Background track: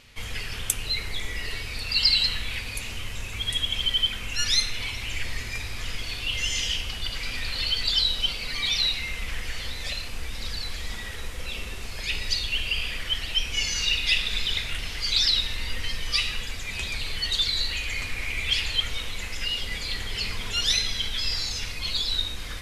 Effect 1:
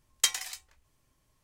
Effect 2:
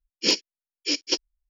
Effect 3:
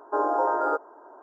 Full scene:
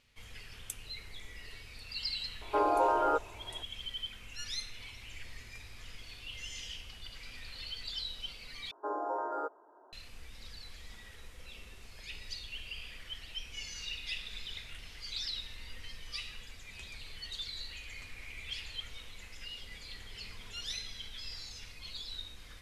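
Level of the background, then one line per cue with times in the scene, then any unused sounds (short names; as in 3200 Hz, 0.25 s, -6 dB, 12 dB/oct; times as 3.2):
background track -16.5 dB
2.41 add 3 -3.5 dB
8.71 replace with 3 -11.5 dB
not used: 1, 2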